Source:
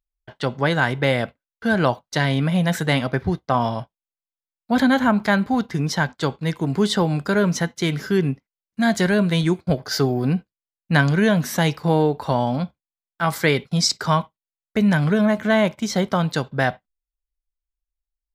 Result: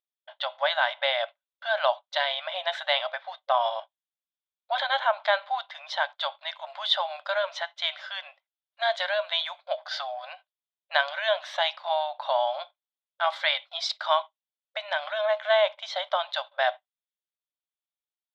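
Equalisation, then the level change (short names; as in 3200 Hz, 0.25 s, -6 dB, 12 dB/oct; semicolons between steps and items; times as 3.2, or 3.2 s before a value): brick-wall FIR high-pass 550 Hz; synth low-pass 3500 Hz, resonance Q 6.1; tilt shelf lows +6.5 dB, about 1200 Hz; -5.0 dB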